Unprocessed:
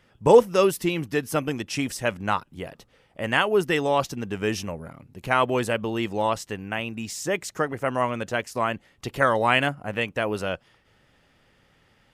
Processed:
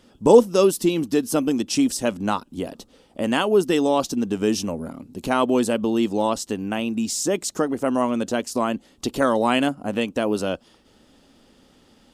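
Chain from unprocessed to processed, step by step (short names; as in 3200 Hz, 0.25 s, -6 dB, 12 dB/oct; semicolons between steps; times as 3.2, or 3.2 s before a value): ten-band EQ 125 Hz -10 dB, 250 Hz +11 dB, 2000 Hz -10 dB, 4000 Hz +4 dB, 8000 Hz +5 dB; in parallel at +1 dB: compressor, threshold -30 dBFS, peak gain reduction 21.5 dB; on the sum: gain -1 dB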